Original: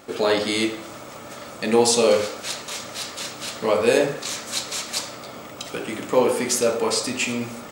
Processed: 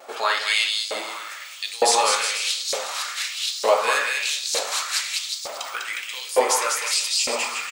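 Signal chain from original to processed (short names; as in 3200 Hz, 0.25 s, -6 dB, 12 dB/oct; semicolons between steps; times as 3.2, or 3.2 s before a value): vibrato 0.49 Hz 13 cents; bouncing-ball echo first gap 0.2 s, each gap 0.8×, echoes 5; LFO high-pass saw up 1.1 Hz 580–5100 Hz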